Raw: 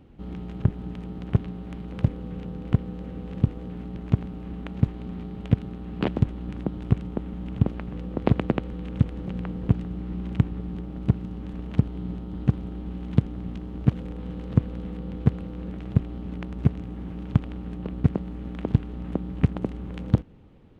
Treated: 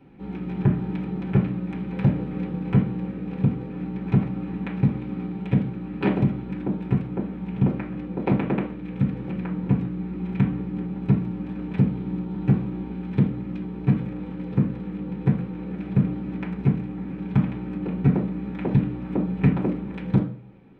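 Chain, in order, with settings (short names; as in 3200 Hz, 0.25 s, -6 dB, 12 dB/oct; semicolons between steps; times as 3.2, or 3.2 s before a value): reverb RT60 0.50 s, pre-delay 3 ms, DRR -7.5 dB; AGC; gain -7.5 dB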